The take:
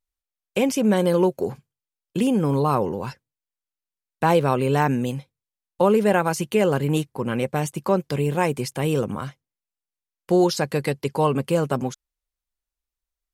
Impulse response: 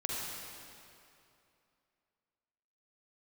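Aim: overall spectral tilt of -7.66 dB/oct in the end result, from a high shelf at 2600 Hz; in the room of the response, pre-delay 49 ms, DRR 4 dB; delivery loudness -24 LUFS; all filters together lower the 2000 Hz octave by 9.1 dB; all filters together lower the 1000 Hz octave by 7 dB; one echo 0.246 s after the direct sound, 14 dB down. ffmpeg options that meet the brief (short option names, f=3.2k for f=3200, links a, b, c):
-filter_complex "[0:a]equalizer=f=1k:t=o:g=-7,equalizer=f=2k:t=o:g=-7.5,highshelf=f=2.6k:g=-5,aecho=1:1:246:0.2,asplit=2[a][b];[1:a]atrim=start_sample=2205,adelay=49[c];[b][c]afir=irnorm=-1:irlink=0,volume=-8.5dB[d];[a][d]amix=inputs=2:normalize=0,volume=-1.5dB"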